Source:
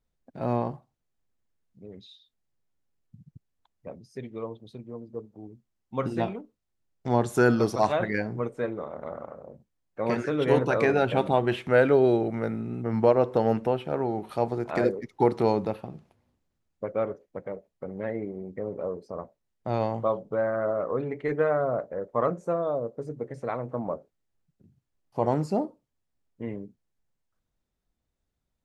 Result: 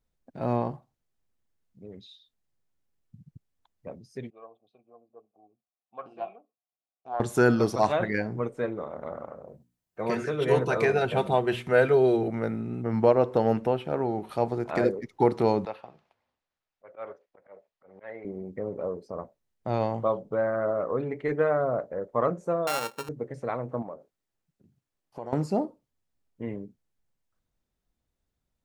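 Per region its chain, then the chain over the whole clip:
0:04.30–0:07.20: formant filter a + highs frequency-modulated by the lows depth 0.15 ms
0:09.47–0:12.28: high-shelf EQ 6,500 Hz +7.5 dB + mains-hum notches 60/120/180/240/300 Hz + notch comb filter 280 Hz
0:15.65–0:18.25: three-way crossover with the lows and the highs turned down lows −18 dB, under 560 Hz, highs −16 dB, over 5,500 Hz + volume swells 133 ms + floating-point word with a short mantissa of 8 bits
0:22.67–0:23.09: samples sorted by size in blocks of 32 samples + high-pass filter 48 Hz + low-shelf EQ 170 Hz −10.5 dB
0:23.82–0:25.33: low-shelf EQ 150 Hz −9.5 dB + downward compressor 2.5 to 1, threshold −38 dBFS
whole clip: no processing

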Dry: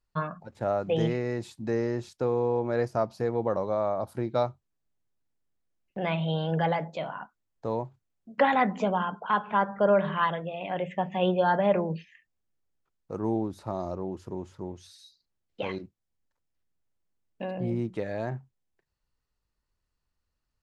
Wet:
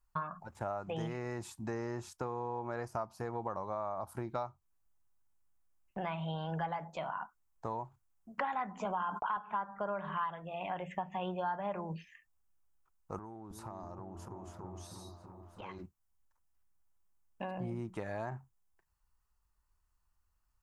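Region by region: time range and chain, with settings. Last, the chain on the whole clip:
0:08.85–0:09.37: high-pass filter 190 Hz + noise gate −47 dBFS, range −42 dB + envelope flattener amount 70%
0:13.18–0:15.79: downward compressor 10 to 1, threshold −39 dBFS + echo whose low-pass opens from repeat to repeat 326 ms, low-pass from 400 Hz, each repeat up 1 octave, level −3 dB
whole clip: octave-band graphic EQ 125/250/500/1,000/2,000/4,000 Hz −8/−8/−12/+4/−6/−11 dB; downward compressor 4 to 1, threshold −41 dBFS; level +5.5 dB

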